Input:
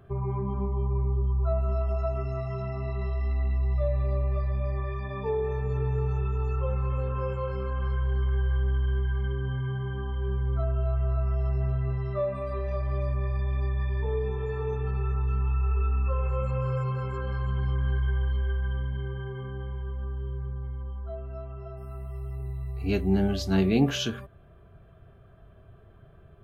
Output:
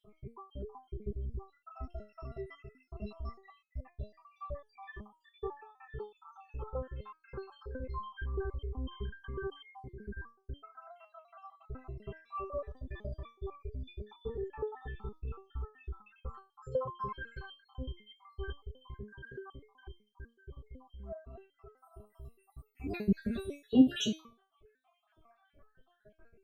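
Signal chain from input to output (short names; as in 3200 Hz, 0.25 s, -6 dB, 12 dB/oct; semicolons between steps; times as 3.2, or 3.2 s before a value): random spectral dropouts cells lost 76%; stepped resonator 8 Hz 210–430 Hz; gain +12.5 dB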